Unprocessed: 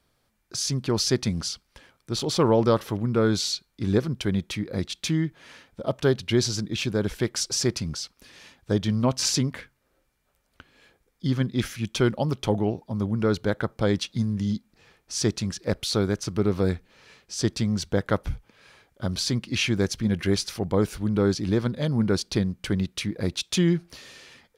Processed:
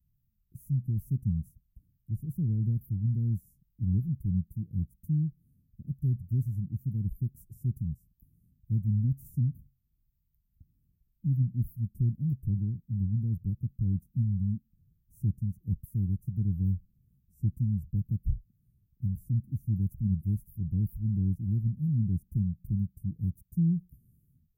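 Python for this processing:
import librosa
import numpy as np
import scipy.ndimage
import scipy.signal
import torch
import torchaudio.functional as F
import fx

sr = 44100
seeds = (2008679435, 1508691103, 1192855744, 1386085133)

y = fx.wow_flutter(x, sr, seeds[0], rate_hz=2.1, depth_cents=94.0)
y = scipy.signal.sosfilt(scipy.signal.cheby2(4, 80, [810.0, 4400.0], 'bandstop', fs=sr, output='sos'), y)
y = y * 10.0 ** (1.0 / 20.0)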